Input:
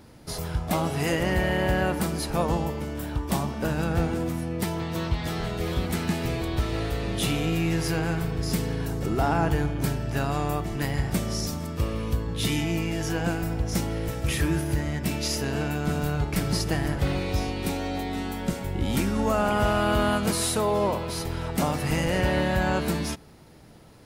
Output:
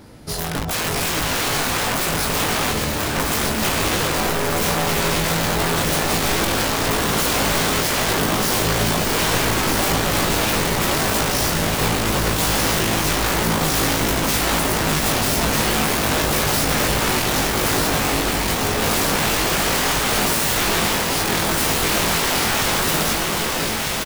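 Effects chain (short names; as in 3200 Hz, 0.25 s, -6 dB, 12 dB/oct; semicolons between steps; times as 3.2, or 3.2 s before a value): wrapped overs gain 24.5 dB; doubler 19 ms -5.5 dB; on a send: echo with dull and thin repeats by turns 0.624 s, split 1700 Hz, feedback 87%, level -2.5 dB; on the sum: gain +6 dB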